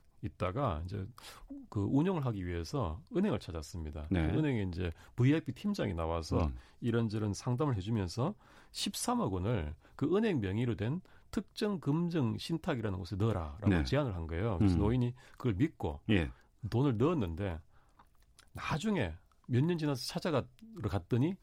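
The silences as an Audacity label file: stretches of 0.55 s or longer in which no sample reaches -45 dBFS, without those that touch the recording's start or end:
17.600000	18.390000	silence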